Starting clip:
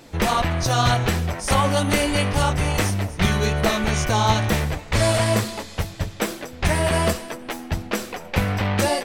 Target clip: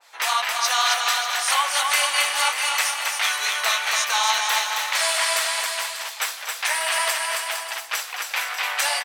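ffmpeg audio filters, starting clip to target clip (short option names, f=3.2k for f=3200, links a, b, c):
-af "highpass=f=870:w=0.5412,highpass=f=870:w=1.3066,aecho=1:1:270|459|591.3|683.9|748.7:0.631|0.398|0.251|0.158|0.1,adynamicequalizer=threshold=0.0158:dfrequency=1700:dqfactor=0.7:tfrequency=1700:tqfactor=0.7:attack=5:release=100:ratio=0.375:range=2:mode=boostabove:tftype=highshelf"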